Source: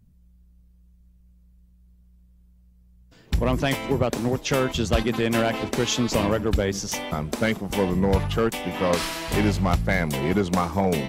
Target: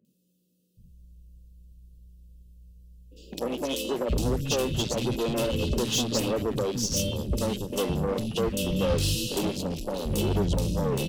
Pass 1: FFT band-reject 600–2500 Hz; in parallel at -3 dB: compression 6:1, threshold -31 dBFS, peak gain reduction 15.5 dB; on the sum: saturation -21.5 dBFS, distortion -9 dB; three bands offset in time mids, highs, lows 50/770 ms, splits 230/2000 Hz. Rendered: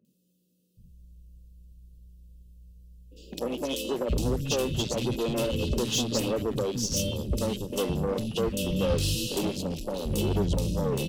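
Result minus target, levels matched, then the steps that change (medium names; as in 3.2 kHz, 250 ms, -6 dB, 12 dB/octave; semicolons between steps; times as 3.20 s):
compression: peak gain reduction +9 dB
change: compression 6:1, threshold -20.5 dBFS, peak gain reduction 6.5 dB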